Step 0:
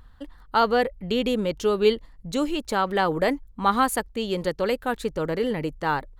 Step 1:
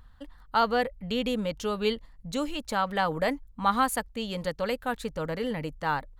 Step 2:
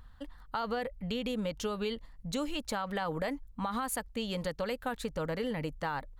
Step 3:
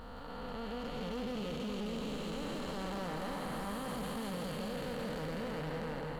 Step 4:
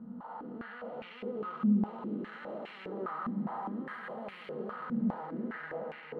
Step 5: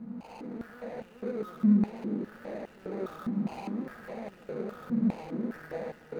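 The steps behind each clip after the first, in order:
bell 370 Hz -15 dB 0.31 oct; gain -3 dB
limiter -20.5 dBFS, peak gain reduction 10 dB; compressor, threshold -30 dBFS, peak gain reduction 6 dB
time blur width 1.05 s; split-band echo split 720 Hz, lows 0.423 s, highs 0.168 s, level -4 dB; hard clip -37.5 dBFS, distortion -12 dB; gain +2.5 dB
reverb, pre-delay 3 ms, DRR 2 dB; stepped band-pass 4.9 Hz 220–2400 Hz
median filter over 41 samples; gain +4.5 dB

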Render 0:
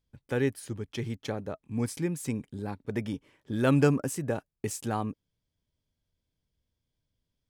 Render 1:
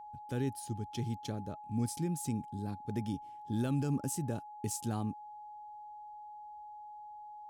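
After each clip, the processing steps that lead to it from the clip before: graphic EQ 500/1000/2000 Hz -8/-7/-11 dB; limiter -24 dBFS, peak gain reduction 10 dB; whine 840 Hz -45 dBFS; gain -1 dB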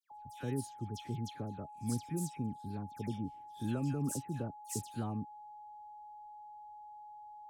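dispersion lows, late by 0.117 s, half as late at 2300 Hz; gain -2.5 dB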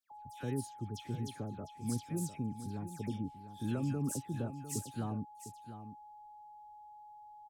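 echo 0.703 s -11.5 dB

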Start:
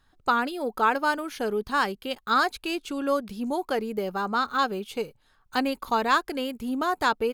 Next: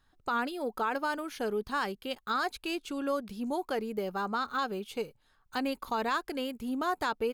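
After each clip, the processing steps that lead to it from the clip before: limiter -17 dBFS, peak gain reduction 7 dB; gain -4.5 dB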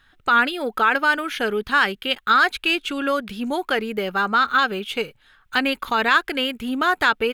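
band shelf 2200 Hz +10 dB; gain +8 dB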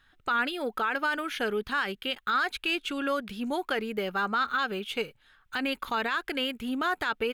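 limiter -13 dBFS, peak gain reduction 8.5 dB; gain -6 dB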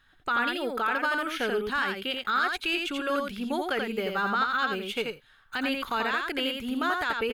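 echo 85 ms -4 dB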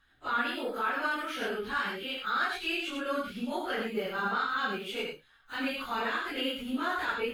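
phase scrambler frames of 0.1 s; gain -4 dB

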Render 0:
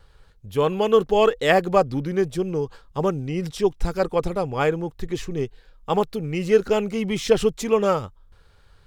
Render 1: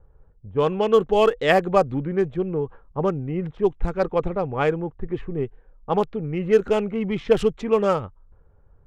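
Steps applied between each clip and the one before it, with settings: Wiener smoothing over 9 samples; low-pass opened by the level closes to 700 Hz, open at -13.5 dBFS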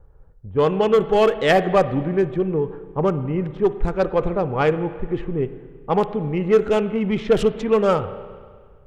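soft clip -11 dBFS, distortion -17 dB; reverb RT60 1.7 s, pre-delay 32 ms, DRR 12 dB; gain +3.5 dB

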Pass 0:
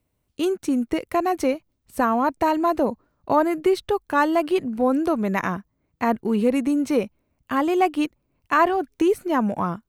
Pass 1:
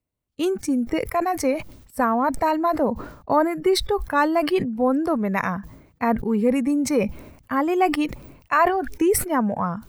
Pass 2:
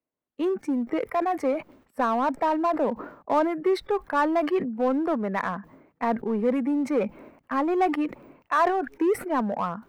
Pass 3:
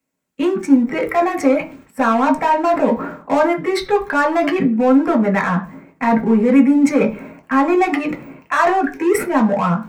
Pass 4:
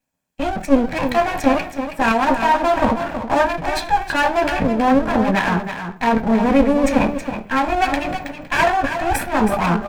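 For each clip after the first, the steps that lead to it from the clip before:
spectral noise reduction 11 dB; sustainer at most 84 dB/s
three-band isolator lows -22 dB, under 200 Hz, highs -19 dB, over 2400 Hz; in parallel at -3.5 dB: hard clip -24 dBFS, distortion -6 dB; on the sum: gain -5 dB
in parallel at +1.5 dB: limiter -22 dBFS, peak gain reduction 11 dB; on the sum: reverb RT60 0.35 s, pre-delay 3 ms, DRR 1 dB; gain +3.5 dB
minimum comb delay 1.2 ms; echo 0.322 s -9 dB

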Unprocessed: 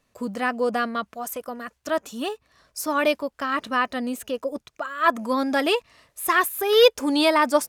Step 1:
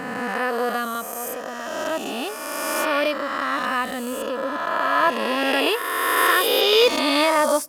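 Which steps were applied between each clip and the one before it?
spectral swells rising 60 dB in 2.47 s; on a send at -23 dB: reverb RT60 0.50 s, pre-delay 7 ms; on the sum: gain -3.5 dB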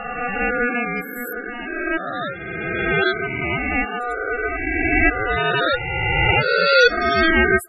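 loudest bins only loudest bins 16; ring modulator 970 Hz; gain +6.5 dB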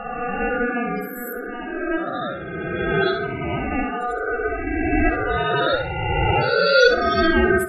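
bell 2200 Hz -13 dB 0.7 oct; on a send: tape echo 66 ms, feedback 37%, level -4 dB, low-pass 3800 Hz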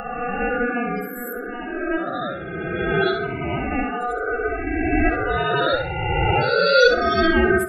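upward compressor, threshold -33 dBFS

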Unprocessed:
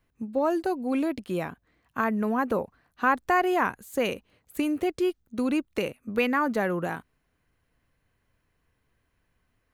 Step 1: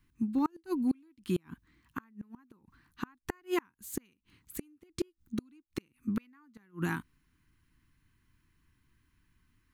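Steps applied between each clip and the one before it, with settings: EQ curve 330 Hz 0 dB, 590 Hz -29 dB, 950 Hz -5 dB, 5100 Hz -1 dB; flipped gate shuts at -23 dBFS, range -36 dB; gain +3 dB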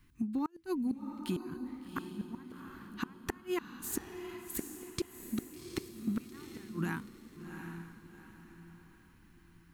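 compressor 3:1, threshold -40 dBFS, peak gain reduction 12 dB; diffused feedback echo 0.752 s, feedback 40%, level -7 dB; gain +5.5 dB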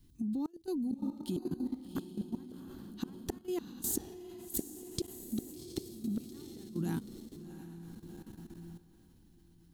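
band shelf 1600 Hz -15 dB; level quantiser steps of 14 dB; gain +8.5 dB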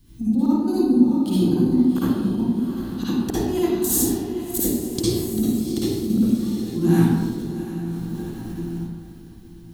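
reverb RT60 1.4 s, pre-delay 50 ms, DRR -10 dB; gain +7.5 dB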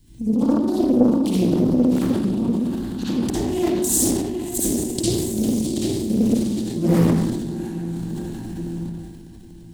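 thirty-one-band EQ 500 Hz -4 dB, 1250 Hz -10 dB, 8000 Hz +8 dB, 12500 Hz -3 dB; transient shaper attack 0 dB, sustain +7 dB; Doppler distortion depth 0.61 ms

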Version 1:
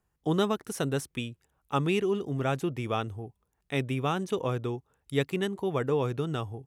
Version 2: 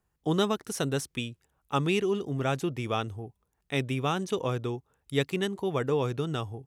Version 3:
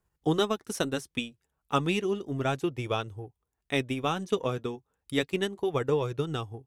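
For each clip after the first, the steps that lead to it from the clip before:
dynamic EQ 5200 Hz, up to +5 dB, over -52 dBFS, Q 0.83
transient shaper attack +4 dB, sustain -6 dB; flange 0.33 Hz, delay 1.9 ms, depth 2.7 ms, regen -61%; gain +3 dB

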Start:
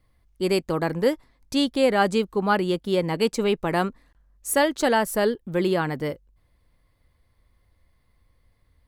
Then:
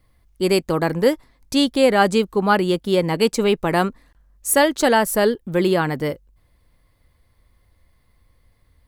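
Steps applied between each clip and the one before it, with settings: high shelf 8000 Hz +4 dB; gain +4.5 dB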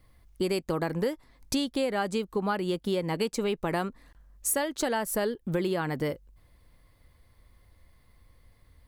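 compressor 6:1, threshold -26 dBFS, peak gain reduction 15 dB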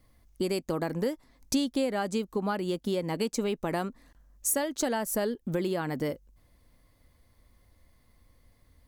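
fifteen-band EQ 250 Hz +6 dB, 630 Hz +3 dB, 6300 Hz +6 dB, 16000 Hz +6 dB; gain -3.5 dB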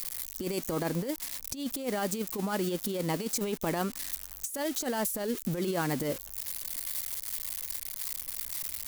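switching spikes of -27.5 dBFS; negative-ratio compressor -30 dBFS, ratio -0.5

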